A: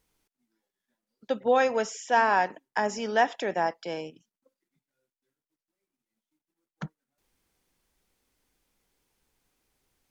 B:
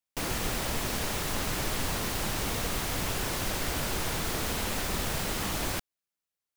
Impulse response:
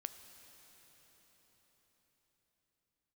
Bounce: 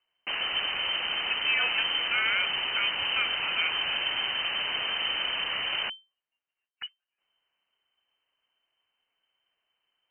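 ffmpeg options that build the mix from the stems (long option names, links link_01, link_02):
-filter_complex "[0:a]equalizer=frequency=380:width=0.87:gain=-5.5,alimiter=limit=-18.5dB:level=0:latency=1,volume=-1dB[link_01];[1:a]adelay=100,volume=2dB[link_02];[link_01][link_02]amix=inputs=2:normalize=0,lowpass=frequency=2600:width_type=q:width=0.5098,lowpass=frequency=2600:width_type=q:width=0.6013,lowpass=frequency=2600:width_type=q:width=0.9,lowpass=frequency=2600:width_type=q:width=2.563,afreqshift=-3100"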